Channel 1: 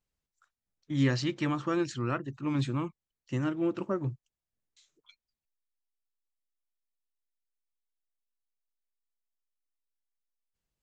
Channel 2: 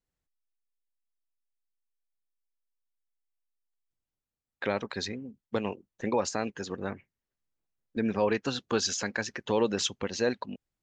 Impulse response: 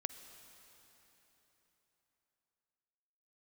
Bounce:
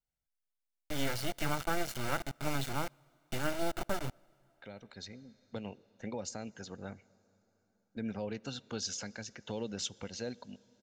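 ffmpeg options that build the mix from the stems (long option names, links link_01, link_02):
-filter_complex "[0:a]acrossover=split=300|1600[link_01][link_02][link_03];[link_01]acompressor=threshold=-40dB:ratio=4[link_04];[link_02]acompressor=threshold=-32dB:ratio=4[link_05];[link_03]acompressor=threshold=-41dB:ratio=4[link_06];[link_04][link_05][link_06]amix=inputs=3:normalize=0,acrusher=bits=4:dc=4:mix=0:aa=0.000001,volume=2.5dB,asplit=3[link_07][link_08][link_09];[link_08]volume=-17.5dB[link_10];[1:a]acrossover=split=470|3000[link_11][link_12][link_13];[link_12]acompressor=threshold=-40dB:ratio=6[link_14];[link_11][link_14][link_13]amix=inputs=3:normalize=0,volume=-10dB,asplit=2[link_15][link_16];[link_16]volume=-9dB[link_17];[link_09]apad=whole_len=477271[link_18];[link_15][link_18]sidechaincompress=threshold=-50dB:ratio=8:attack=7.2:release=1010[link_19];[2:a]atrim=start_sample=2205[link_20];[link_10][link_17]amix=inputs=2:normalize=0[link_21];[link_21][link_20]afir=irnorm=-1:irlink=0[link_22];[link_07][link_19][link_22]amix=inputs=3:normalize=0,aecho=1:1:1.4:0.46"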